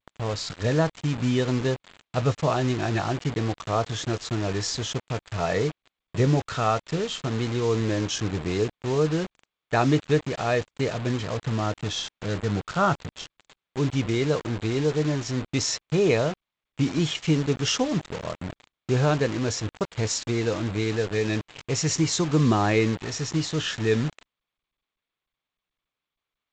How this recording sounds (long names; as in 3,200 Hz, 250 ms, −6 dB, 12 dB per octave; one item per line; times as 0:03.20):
a quantiser's noise floor 6 bits, dither none
G.722